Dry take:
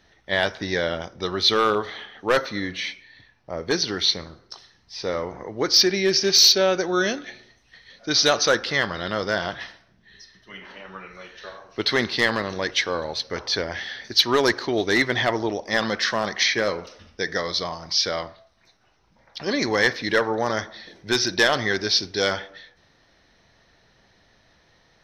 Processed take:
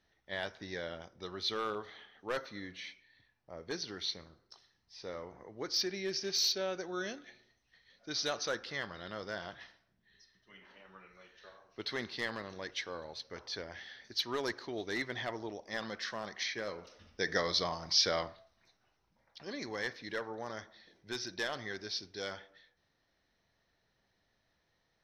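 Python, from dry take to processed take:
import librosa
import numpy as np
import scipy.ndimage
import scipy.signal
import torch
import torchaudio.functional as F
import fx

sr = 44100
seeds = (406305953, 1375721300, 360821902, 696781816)

y = fx.gain(x, sr, db=fx.line((16.66, -16.5), (17.33, -6.0), (18.23, -6.0), (19.5, -18.0)))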